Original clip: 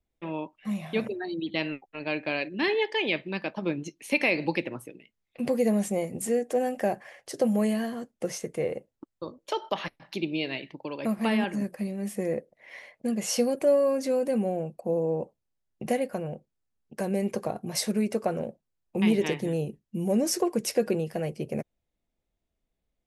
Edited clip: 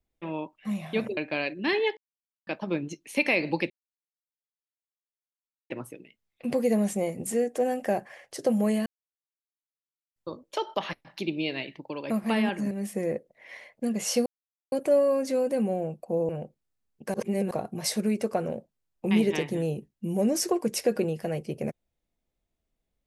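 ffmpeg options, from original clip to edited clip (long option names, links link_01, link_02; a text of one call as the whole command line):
ffmpeg -i in.wav -filter_complex "[0:a]asplit=12[link_01][link_02][link_03][link_04][link_05][link_06][link_07][link_08][link_09][link_10][link_11][link_12];[link_01]atrim=end=1.172[link_13];[link_02]atrim=start=2.118:end=2.92,asetpts=PTS-STARTPTS,afade=type=out:start_time=0.798:duration=0.004:curve=hsin[link_14];[link_03]atrim=start=2.92:end=3.42,asetpts=PTS-STARTPTS,volume=0[link_15];[link_04]atrim=start=3.42:end=4.65,asetpts=PTS-STARTPTS,afade=type=in:duration=0.004:curve=hsin,afade=type=out:start_time=1.226:duration=0.004:curve=hsin,apad=pad_dur=2[link_16];[link_05]atrim=start=4.65:end=7.81,asetpts=PTS-STARTPTS,afade=type=in:duration=0.004:curve=hsin,afade=type=out:start_time=3.156:duration=0.004:curve=hsin[link_17];[link_06]atrim=start=7.81:end=9.11,asetpts=PTS-STARTPTS,volume=0[link_18];[link_07]atrim=start=9.11:end=11.662,asetpts=PTS-STARTPTS,afade=type=in:duration=0.004:curve=hsin[link_19];[link_08]atrim=start=11.928:end=13.48,asetpts=PTS-STARTPTS,afade=type=out:start_time=1.548:duration=0.004:curve=hsin,apad=pad_dur=0.46[link_20];[link_09]atrim=start=13.48:end=15.052,asetpts=PTS-STARTPTS,afade=type=in:duration=0.004:curve=hsin[link_21];[link_10]atrim=start=16.198:end=17.052[link_22];[link_11]atrim=start=17.048:end=17.422,asetpts=PTS-STARTPTS,areverse[link_23];[link_12]atrim=start=17.418[link_24];[link_14][link_15][link_16][link_17][link_18][link_19]concat=n=6:v=0:a=1[link_25];[link_13][link_25]acrossfade=duration=0.004:curve1=hsin:curve2=hsin[link_26];[link_20][link_21]concat=n=2:v=0:a=1[link_27];[link_26][link_27]acrossfade=duration=0.004:curve1=hsin:curve2=hsin[link_28];[link_28][link_22]acrossfade=duration=0.004:curve1=hsin:curve2=hsin[link_29];[link_29][link_23]acrossfade=duration=0.004:curve1=hsin:curve2=hsin[link_30];[link_30][link_24]acrossfade=duration=0.004:curve1=hsin:curve2=hsin" out.wav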